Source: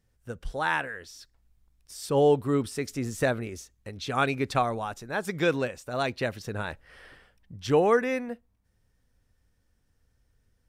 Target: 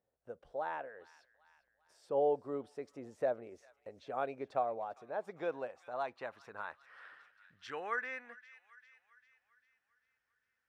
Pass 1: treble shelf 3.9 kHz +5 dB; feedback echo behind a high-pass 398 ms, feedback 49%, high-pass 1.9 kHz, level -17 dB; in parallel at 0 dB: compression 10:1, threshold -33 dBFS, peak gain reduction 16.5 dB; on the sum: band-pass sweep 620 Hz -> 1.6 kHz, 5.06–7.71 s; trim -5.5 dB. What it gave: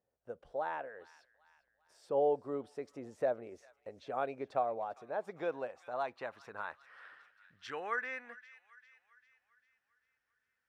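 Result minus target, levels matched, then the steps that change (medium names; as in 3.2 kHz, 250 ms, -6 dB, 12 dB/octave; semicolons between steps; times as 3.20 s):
compression: peak gain reduction -7 dB
change: compression 10:1, threshold -40.5 dBFS, peak gain reduction 23 dB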